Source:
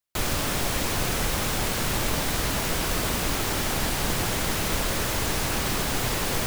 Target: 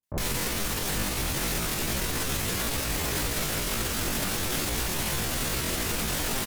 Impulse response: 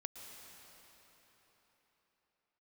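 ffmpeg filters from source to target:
-filter_complex "[0:a]acrossover=split=510[a][b];[b]adelay=50[c];[a][c]amix=inputs=2:normalize=0,asetrate=74167,aresample=44100,atempo=0.594604,alimiter=limit=-22dB:level=0:latency=1:release=94,asplit=2[d][e];[1:a]atrim=start_sample=2205,asetrate=28224,aresample=44100,highshelf=f=4.9k:g=9[f];[e][f]afir=irnorm=-1:irlink=0,volume=-7.5dB[g];[d][g]amix=inputs=2:normalize=0"

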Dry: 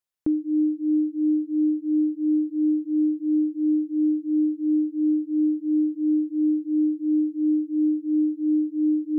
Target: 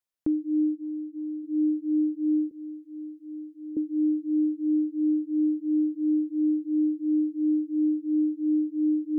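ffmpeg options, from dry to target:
-filter_complex "[0:a]asplit=3[a][b][c];[a]afade=t=out:st=0.74:d=0.02[d];[b]acompressor=threshold=-32dB:ratio=3,afade=t=in:st=0.74:d=0.02,afade=t=out:st=1.43:d=0.02[e];[c]afade=t=in:st=1.43:d=0.02[f];[d][e][f]amix=inputs=3:normalize=0,asettb=1/sr,asplit=3[g][h][i];[g]atrim=end=2.514[j];[h]atrim=start=2.51:end=3.77,asetpts=PTS-STARTPTS,afade=t=in:d=0.004:c=qsin,afade=t=out:st=1.256:d=0.004:c=qsin,highpass=f=450:w=0.5412,highpass=f=450:w=1.3066[k];[i]atrim=start=3.766[l];[j][k]acrossfade=d=0.004:c1=hsin:c2=qsin[m];[m][l]acrossfade=d=0.004:c1=qsin:c2=hsin,volume=-2.5dB"

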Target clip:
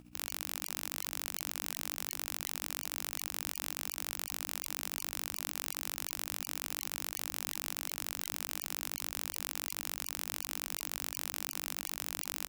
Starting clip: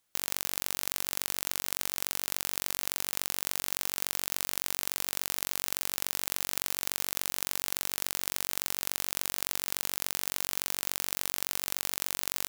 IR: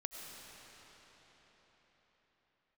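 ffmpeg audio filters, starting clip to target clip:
-filter_complex "[0:a]aeval=exprs='val(0)+0.00282*(sin(2*PI*60*n/s)+sin(2*PI*2*60*n/s)/2+sin(2*PI*3*60*n/s)/3+sin(2*PI*4*60*n/s)/4+sin(2*PI*5*60*n/s)/5)':c=same,tremolo=f=14:d=0.78,asplit=2[a][b];[b]acrusher=samples=17:mix=1:aa=0.000001,volume=-4dB[c];[a][c]amix=inputs=2:normalize=0,volume=14.5dB,asoftclip=hard,volume=-14.5dB,bass=f=250:g=-8,treble=f=4k:g=-2,asplit=2[d][e];[e]aecho=0:1:383:0.119[f];[d][f]amix=inputs=2:normalize=0,afftfilt=real='re*lt(hypot(re,im),0.00794)':imag='im*lt(hypot(re,im),0.00794)':win_size=1024:overlap=0.75,volume=6.5dB"

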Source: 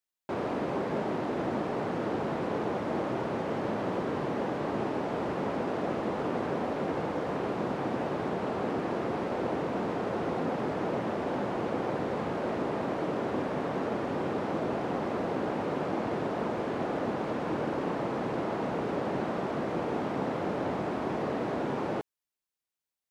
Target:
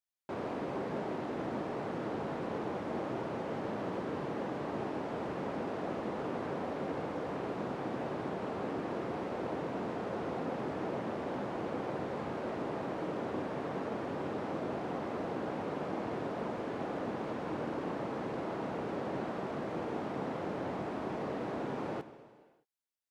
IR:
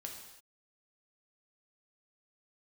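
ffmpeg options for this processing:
-filter_complex "[0:a]asplit=2[a][b];[1:a]atrim=start_sample=2205,asetrate=24255,aresample=44100[c];[b][c]afir=irnorm=-1:irlink=0,volume=-9dB[d];[a][d]amix=inputs=2:normalize=0,volume=-8dB"

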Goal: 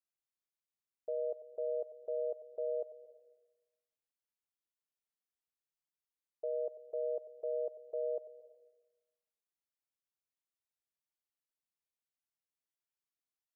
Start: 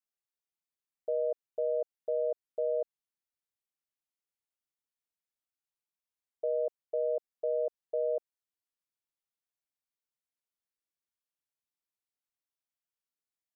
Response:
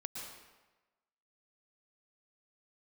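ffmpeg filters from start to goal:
-filter_complex "[0:a]asplit=2[a][b];[1:a]atrim=start_sample=2205,adelay=94[c];[b][c]afir=irnorm=-1:irlink=0,volume=-12dB[d];[a][d]amix=inputs=2:normalize=0,volume=-6dB"

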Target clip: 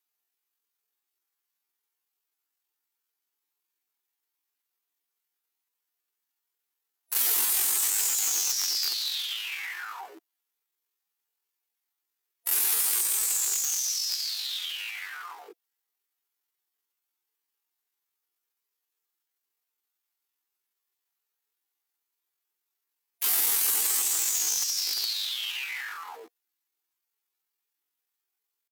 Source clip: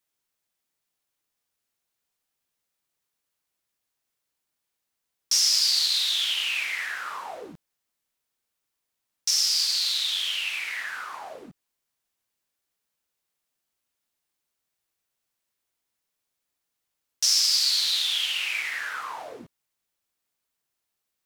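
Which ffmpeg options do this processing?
-af "aeval=exprs='(mod(8.41*val(0)+1,2)-1)/8.41':c=same,highpass=f=170:w=0.5412,highpass=f=170:w=1.3066,atempo=0.74,superequalizer=6b=0.282:15b=2,asetrate=83250,aresample=44100,atempo=0.529732"

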